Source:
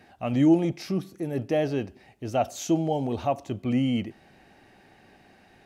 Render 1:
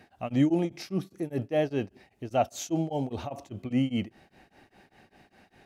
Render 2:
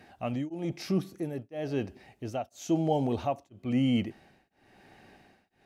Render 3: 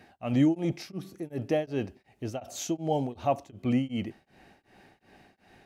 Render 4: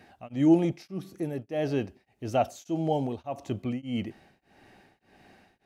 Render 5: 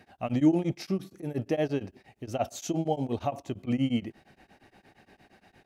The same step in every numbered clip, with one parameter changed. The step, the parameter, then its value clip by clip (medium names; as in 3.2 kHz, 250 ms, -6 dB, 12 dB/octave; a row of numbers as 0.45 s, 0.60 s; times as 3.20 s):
tremolo of two beating tones, nulls at: 5 Hz, 1 Hz, 2.7 Hz, 1.7 Hz, 8.6 Hz